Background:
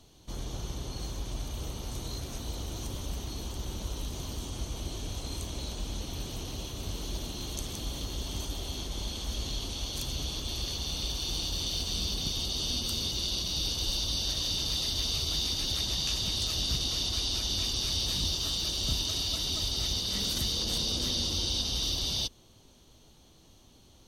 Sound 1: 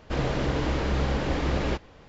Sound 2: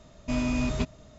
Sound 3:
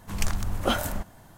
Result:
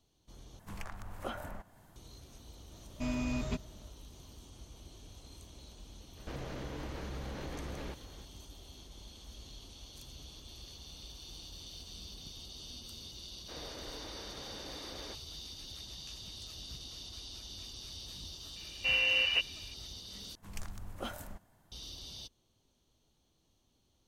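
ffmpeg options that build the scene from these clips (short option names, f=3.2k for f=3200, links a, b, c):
-filter_complex "[3:a]asplit=2[a][b];[2:a]asplit=2[c][d];[1:a]asplit=2[e][f];[0:a]volume=-16dB[g];[a]acrossover=split=490|2400[h][i][j];[h]acompressor=threshold=-33dB:ratio=4[k];[i]acompressor=threshold=-30dB:ratio=4[l];[j]acompressor=threshold=-49dB:ratio=4[m];[k][l][m]amix=inputs=3:normalize=0[n];[e]acompressor=threshold=-33dB:ratio=6:attack=3.2:release=140:knee=1:detection=peak[o];[f]highpass=300[p];[d]lowpass=f=2.6k:t=q:w=0.5098,lowpass=f=2.6k:t=q:w=0.6013,lowpass=f=2.6k:t=q:w=0.9,lowpass=f=2.6k:t=q:w=2.563,afreqshift=-3000[q];[g]asplit=3[r][s][t];[r]atrim=end=0.594[u];[n]atrim=end=1.37,asetpts=PTS-STARTPTS,volume=-9dB[v];[s]atrim=start=1.956:end=20.354[w];[b]atrim=end=1.37,asetpts=PTS-STARTPTS,volume=-16dB[x];[t]atrim=start=21.716[y];[c]atrim=end=1.18,asetpts=PTS-STARTPTS,volume=-7.5dB,afade=t=in:d=0.004:c=hsin,afade=t=out:st=1.176:d=0.004:c=hsin,adelay=2720[z];[o]atrim=end=2.08,asetpts=PTS-STARTPTS,volume=-5.5dB,afade=t=in:d=0.004:c=hsin,afade=t=out:st=2.076:d=0.004:c=hsin,adelay=6170[aa];[p]atrim=end=2.08,asetpts=PTS-STARTPTS,volume=-18dB,afade=t=in:d=0.004:c=hsin,afade=t=out:st=2.076:d=0.004:c=hsin,adelay=13380[ab];[q]atrim=end=1.18,asetpts=PTS-STARTPTS,volume=-2.5dB,afade=t=in:d=0.004:c=hsin,afade=t=out:st=1.176:d=0.004:c=hsin,adelay=18560[ac];[u][v]acrossfade=d=0.004:c1=hsin:c2=hsin[ad];[ad][w]acrossfade=d=0.004:c1=hsin:c2=hsin[ae];[ae][x]acrossfade=d=0.004:c1=hsin:c2=hsin[af];[af][y]acrossfade=d=0.004:c1=hsin:c2=hsin[ag];[ag][z][aa][ab][ac]amix=inputs=5:normalize=0"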